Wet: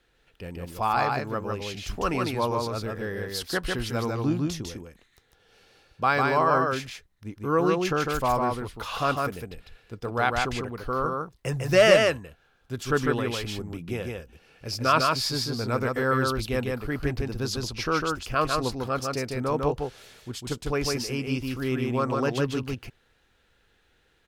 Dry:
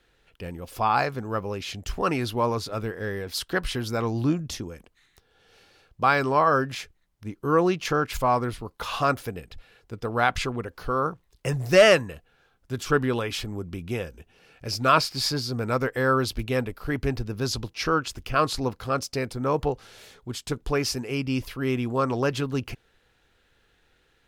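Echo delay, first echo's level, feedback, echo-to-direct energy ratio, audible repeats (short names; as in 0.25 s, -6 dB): 0.151 s, -3.0 dB, no steady repeat, -3.0 dB, 1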